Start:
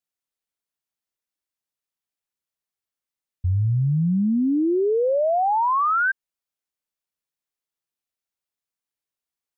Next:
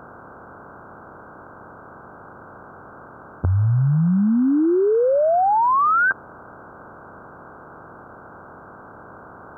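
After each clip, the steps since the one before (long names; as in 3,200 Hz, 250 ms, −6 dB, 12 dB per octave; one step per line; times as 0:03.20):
compressor on every frequency bin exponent 0.4
level +1.5 dB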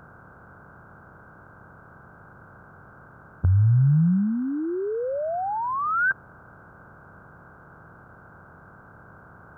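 flat-topped bell 540 Hz −10 dB 2.8 octaves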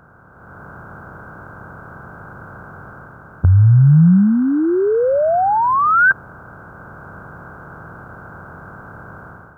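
automatic gain control gain up to 12 dB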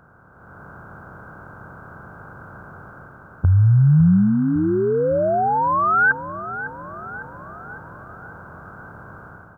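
repeating echo 555 ms, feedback 56%, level −13.5 dB
level −4 dB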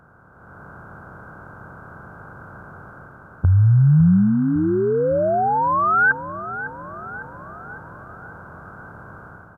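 downsampling to 32,000 Hz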